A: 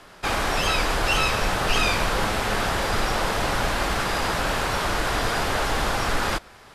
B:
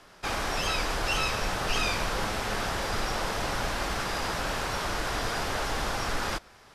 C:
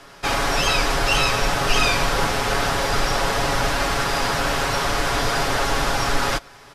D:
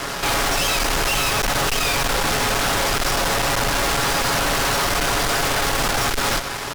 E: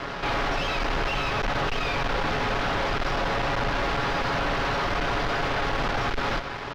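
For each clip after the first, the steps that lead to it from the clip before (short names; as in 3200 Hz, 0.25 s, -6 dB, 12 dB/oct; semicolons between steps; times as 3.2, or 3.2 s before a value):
bell 5600 Hz +4 dB 0.47 oct; gain -6.5 dB
comb 7.2 ms, depth 50%; gain +8 dB
fuzz box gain 44 dB, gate -47 dBFS; gain -6 dB
air absorption 250 m; gain -3.5 dB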